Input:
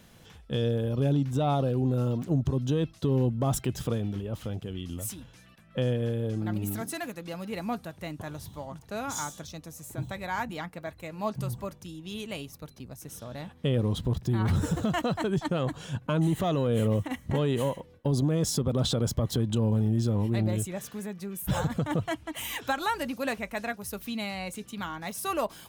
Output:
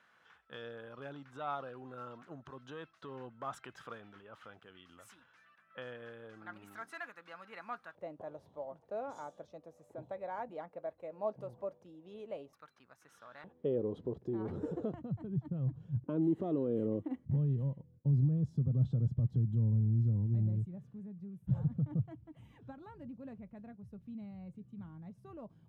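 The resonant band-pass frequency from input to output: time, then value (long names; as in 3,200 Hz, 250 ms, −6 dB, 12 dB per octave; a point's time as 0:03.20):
resonant band-pass, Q 2.7
1,400 Hz
from 0:07.95 560 Hz
from 0:12.53 1,400 Hz
from 0:13.44 410 Hz
from 0:14.94 120 Hz
from 0:16.04 330 Hz
from 0:17.25 130 Hz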